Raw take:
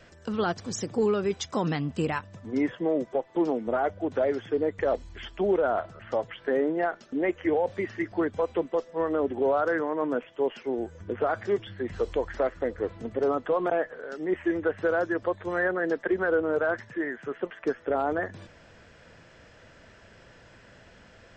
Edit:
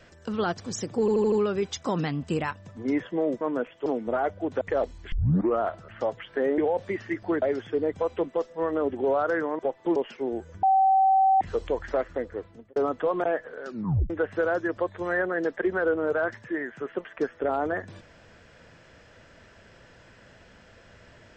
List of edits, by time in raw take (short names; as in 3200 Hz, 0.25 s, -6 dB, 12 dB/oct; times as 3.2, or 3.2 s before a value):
1 stutter 0.08 s, 5 plays
3.09–3.46 swap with 9.97–10.42
4.21–4.72 move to 8.31
5.23 tape start 0.49 s
6.69–7.47 cut
11.09–11.87 bleep 769 Hz -16.5 dBFS
12.55–13.22 fade out
14.12 tape stop 0.44 s